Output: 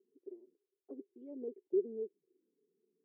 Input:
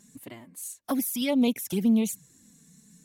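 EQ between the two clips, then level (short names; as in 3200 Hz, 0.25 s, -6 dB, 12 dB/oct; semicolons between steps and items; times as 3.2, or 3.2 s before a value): Butterworth band-pass 390 Hz, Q 6.1; +4.0 dB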